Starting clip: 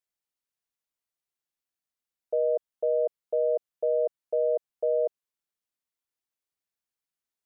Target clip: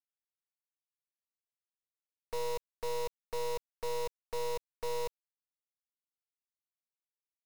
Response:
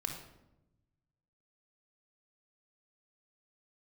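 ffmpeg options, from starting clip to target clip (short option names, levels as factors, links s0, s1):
-filter_complex "[0:a]equalizer=f=310:w=7.5:g=-4,aecho=1:1:4.2:0.82,acontrast=21,asplit=3[s0][s1][s2];[s0]bandpass=f=270:t=q:w=8,volume=1[s3];[s1]bandpass=f=2290:t=q:w=8,volume=0.501[s4];[s2]bandpass=f=3010:t=q:w=8,volume=0.355[s5];[s3][s4][s5]amix=inputs=3:normalize=0,acrusher=bits=5:dc=4:mix=0:aa=0.000001,volume=2.66"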